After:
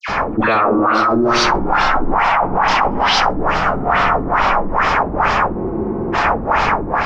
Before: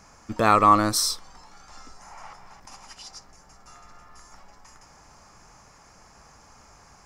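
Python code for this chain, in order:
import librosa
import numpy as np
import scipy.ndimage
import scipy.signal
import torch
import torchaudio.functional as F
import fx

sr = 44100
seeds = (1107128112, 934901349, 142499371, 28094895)

y = scipy.ndimage.median_filter(x, 5, mode='constant')
y = fx.bass_treble(y, sr, bass_db=-8, treble_db=-11)
y = fx.dispersion(y, sr, late='lows', ms=87.0, hz=1900.0)
y = fx.echo_pitch(y, sr, ms=183, semitones=1, count=2, db_per_echo=-3.0)
y = fx.echo_feedback(y, sr, ms=64, feedback_pct=48, wet_db=-4)
y = fx.filter_lfo_lowpass(y, sr, shape='sine', hz=2.3, low_hz=290.0, high_hz=4000.0, q=2.3)
y = fx.spec_freeze(y, sr, seeds[0], at_s=5.58, hold_s=0.57)
y = fx.env_flatten(y, sr, amount_pct=100)
y = F.gain(torch.from_numpy(y), -5.5).numpy()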